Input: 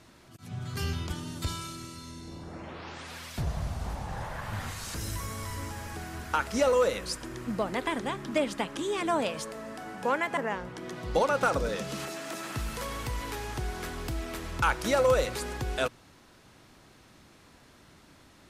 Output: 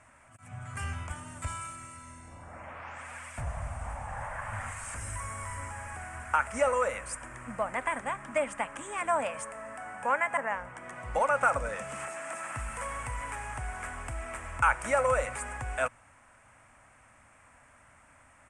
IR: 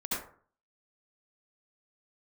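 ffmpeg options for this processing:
-af "firequalizer=gain_entry='entry(110,0);entry(170,-10);entry(250,-4);entry(360,-15);entry(570,3);entry(1200,6);entry(2300,5);entry(4000,-19);entry(8600,10);entry(13000,-22)':delay=0.05:min_phase=1,volume=-3.5dB"

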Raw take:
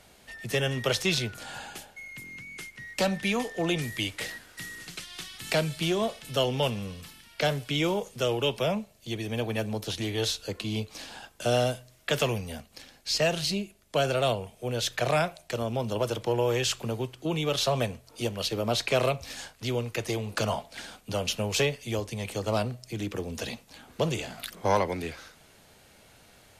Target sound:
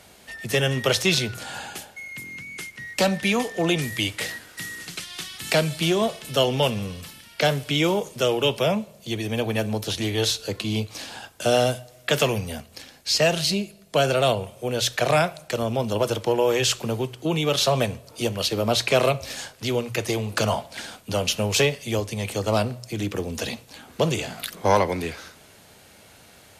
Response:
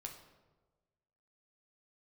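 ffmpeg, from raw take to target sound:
-filter_complex "[0:a]highpass=47,bandreject=f=60:t=h:w=6,bandreject=f=120:t=h:w=6,asplit=2[a][b];[1:a]atrim=start_sample=2205,highshelf=f=4.4k:g=11.5[c];[b][c]afir=irnorm=-1:irlink=0,volume=-13.5dB[d];[a][d]amix=inputs=2:normalize=0,volume=4.5dB"

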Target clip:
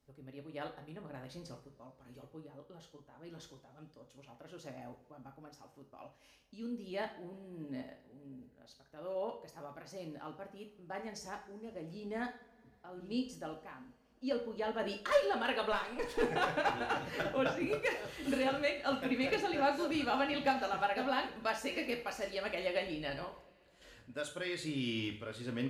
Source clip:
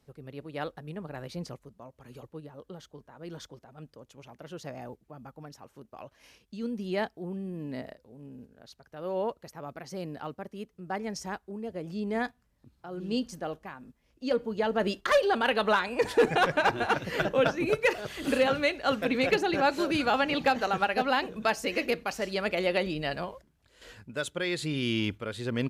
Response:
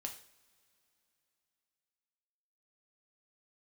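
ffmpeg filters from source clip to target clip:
-filter_complex "[0:a]asettb=1/sr,asplit=3[a][b][c];[a]atrim=end=15.724[d];[b]atrim=start=15.72:end=16.21,asetpts=PTS-STARTPTS,afade=t=in:d=0.004:c=qsin,afade=t=out:st=0.486:d=0.004:c=qsin,aeval=exprs='if(lt(val(0),0),0.447*val(0),val(0))':c=same[e];[c]atrim=start=16.206[f];[d][e]acrossfade=d=0.004:c1=hsin:c2=qsin[g];[g][f]acrossfade=d=0.004:c1=qsin:c2=hsin[h];[1:a]atrim=start_sample=2205[i];[h][i]afir=irnorm=-1:irlink=0,volume=-5.5dB"

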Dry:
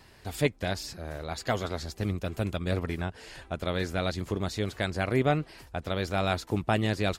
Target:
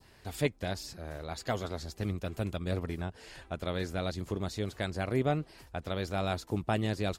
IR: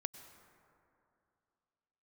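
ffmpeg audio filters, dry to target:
-af "adynamicequalizer=threshold=0.00562:dfrequency=2000:dqfactor=0.75:tfrequency=2000:tqfactor=0.75:attack=5:release=100:ratio=0.375:range=3:mode=cutabove:tftype=bell,volume=-3.5dB"

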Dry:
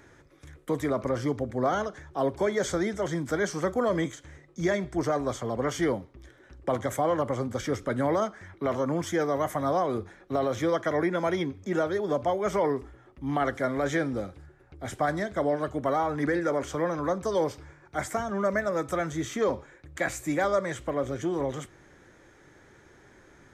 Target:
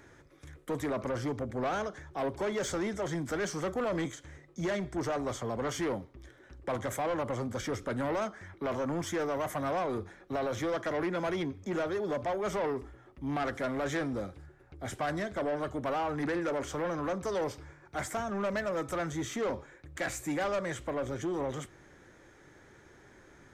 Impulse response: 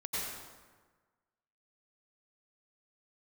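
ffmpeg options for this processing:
-af "asoftclip=type=tanh:threshold=-26dB,volume=-1.5dB"

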